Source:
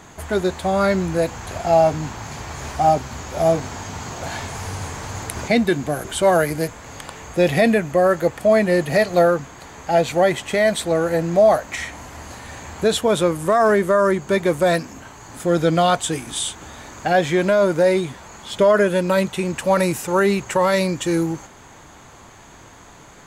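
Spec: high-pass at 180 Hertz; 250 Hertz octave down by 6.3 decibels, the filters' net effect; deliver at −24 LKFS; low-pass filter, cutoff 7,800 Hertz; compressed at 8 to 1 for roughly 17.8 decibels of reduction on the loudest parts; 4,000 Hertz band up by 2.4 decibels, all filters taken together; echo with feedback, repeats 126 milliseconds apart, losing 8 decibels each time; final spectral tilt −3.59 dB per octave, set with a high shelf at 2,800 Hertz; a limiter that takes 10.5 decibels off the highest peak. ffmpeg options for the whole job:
ffmpeg -i in.wav -af "highpass=180,lowpass=7800,equalizer=frequency=250:width_type=o:gain=-8,highshelf=frequency=2800:gain=-6.5,equalizer=frequency=4000:width_type=o:gain=8,acompressor=threshold=-31dB:ratio=8,alimiter=level_in=3dB:limit=-24dB:level=0:latency=1,volume=-3dB,aecho=1:1:126|252|378|504|630:0.398|0.159|0.0637|0.0255|0.0102,volume=12dB" out.wav

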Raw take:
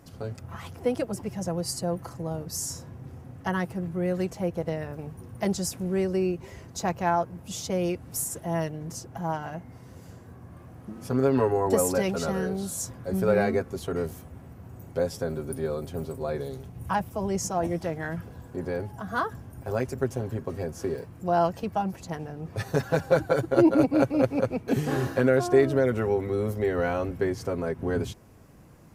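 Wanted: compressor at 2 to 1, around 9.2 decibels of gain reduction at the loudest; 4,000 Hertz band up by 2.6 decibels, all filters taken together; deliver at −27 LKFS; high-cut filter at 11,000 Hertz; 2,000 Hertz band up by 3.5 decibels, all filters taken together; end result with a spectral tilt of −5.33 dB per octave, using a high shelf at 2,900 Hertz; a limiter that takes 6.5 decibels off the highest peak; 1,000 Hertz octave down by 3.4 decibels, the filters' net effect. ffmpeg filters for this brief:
ffmpeg -i in.wav -af "lowpass=11000,equalizer=frequency=1000:width_type=o:gain=-6.5,equalizer=frequency=2000:width_type=o:gain=8,highshelf=frequency=2900:gain=-6,equalizer=frequency=4000:width_type=o:gain=7,acompressor=threshold=-32dB:ratio=2,volume=8dB,alimiter=limit=-14.5dB:level=0:latency=1" out.wav

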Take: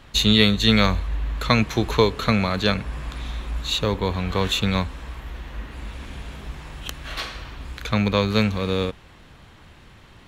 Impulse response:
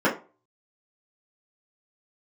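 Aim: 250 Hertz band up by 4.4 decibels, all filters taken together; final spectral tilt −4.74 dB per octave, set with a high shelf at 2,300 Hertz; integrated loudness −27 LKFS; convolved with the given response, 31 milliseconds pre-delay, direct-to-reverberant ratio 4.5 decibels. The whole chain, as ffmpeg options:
-filter_complex "[0:a]equalizer=frequency=250:width_type=o:gain=5.5,highshelf=frequency=2300:gain=8.5,asplit=2[link_01][link_02];[1:a]atrim=start_sample=2205,adelay=31[link_03];[link_02][link_03]afir=irnorm=-1:irlink=0,volume=-22dB[link_04];[link_01][link_04]amix=inputs=2:normalize=0,volume=-11.5dB"

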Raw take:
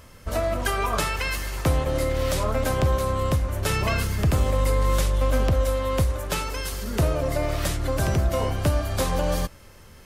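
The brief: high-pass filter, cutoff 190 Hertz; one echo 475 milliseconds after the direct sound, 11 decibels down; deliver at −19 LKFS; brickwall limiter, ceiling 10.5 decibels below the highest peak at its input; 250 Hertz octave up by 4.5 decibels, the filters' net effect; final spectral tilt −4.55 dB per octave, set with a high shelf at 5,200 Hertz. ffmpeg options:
ffmpeg -i in.wav -af "highpass=190,equalizer=frequency=250:width_type=o:gain=8,highshelf=frequency=5200:gain=-6.5,alimiter=limit=-19dB:level=0:latency=1,aecho=1:1:475:0.282,volume=9dB" out.wav

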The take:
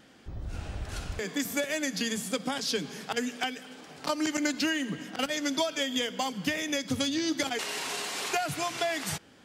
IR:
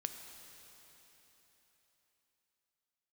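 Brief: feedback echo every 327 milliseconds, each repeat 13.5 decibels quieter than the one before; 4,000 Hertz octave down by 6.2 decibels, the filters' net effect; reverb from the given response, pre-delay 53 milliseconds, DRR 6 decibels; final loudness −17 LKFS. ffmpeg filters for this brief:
-filter_complex "[0:a]equalizer=frequency=4000:width_type=o:gain=-8.5,aecho=1:1:327|654:0.211|0.0444,asplit=2[link_01][link_02];[1:a]atrim=start_sample=2205,adelay=53[link_03];[link_02][link_03]afir=irnorm=-1:irlink=0,volume=-5dB[link_04];[link_01][link_04]amix=inputs=2:normalize=0,volume=14.5dB"

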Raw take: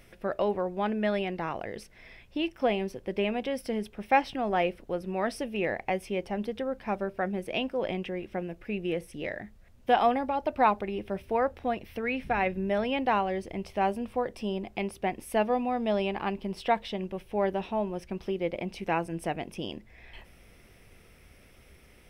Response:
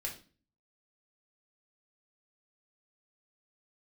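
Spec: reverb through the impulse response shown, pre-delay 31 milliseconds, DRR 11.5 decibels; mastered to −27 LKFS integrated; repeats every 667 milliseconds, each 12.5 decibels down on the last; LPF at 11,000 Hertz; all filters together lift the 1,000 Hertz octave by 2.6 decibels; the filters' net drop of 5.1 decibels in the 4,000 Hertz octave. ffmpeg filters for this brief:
-filter_complex "[0:a]lowpass=11000,equalizer=frequency=1000:width_type=o:gain=4,equalizer=frequency=4000:width_type=o:gain=-8.5,aecho=1:1:667|1334|2001:0.237|0.0569|0.0137,asplit=2[link_01][link_02];[1:a]atrim=start_sample=2205,adelay=31[link_03];[link_02][link_03]afir=irnorm=-1:irlink=0,volume=-12dB[link_04];[link_01][link_04]amix=inputs=2:normalize=0,volume=2dB"

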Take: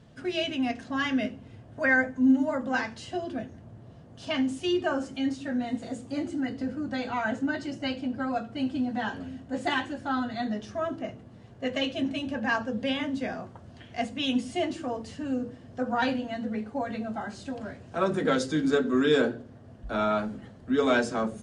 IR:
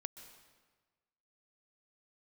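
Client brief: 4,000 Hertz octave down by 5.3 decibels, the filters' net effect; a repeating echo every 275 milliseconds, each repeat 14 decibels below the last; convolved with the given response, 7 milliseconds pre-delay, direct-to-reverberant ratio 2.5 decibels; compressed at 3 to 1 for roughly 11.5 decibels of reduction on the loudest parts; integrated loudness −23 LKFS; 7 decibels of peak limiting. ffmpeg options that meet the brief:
-filter_complex "[0:a]equalizer=frequency=4000:width_type=o:gain=-8,acompressor=threshold=-34dB:ratio=3,alimiter=level_in=5dB:limit=-24dB:level=0:latency=1,volume=-5dB,aecho=1:1:275|550:0.2|0.0399,asplit=2[link_01][link_02];[1:a]atrim=start_sample=2205,adelay=7[link_03];[link_02][link_03]afir=irnorm=-1:irlink=0,volume=1dB[link_04];[link_01][link_04]amix=inputs=2:normalize=0,volume=13dB"

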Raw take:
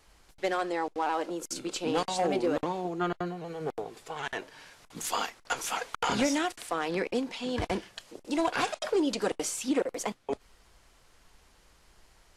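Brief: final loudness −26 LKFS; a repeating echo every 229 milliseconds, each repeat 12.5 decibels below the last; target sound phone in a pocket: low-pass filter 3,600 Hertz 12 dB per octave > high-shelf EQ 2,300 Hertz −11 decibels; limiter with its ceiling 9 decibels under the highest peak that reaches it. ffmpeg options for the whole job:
ffmpeg -i in.wav -af "alimiter=level_in=3.5dB:limit=-24dB:level=0:latency=1,volume=-3.5dB,lowpass=3600,highshelf=frequency=2300:gain=-11,aecho=1:1:229|458|687:0.237|0.0569|0.0137,volume=12.5dB" out.wav

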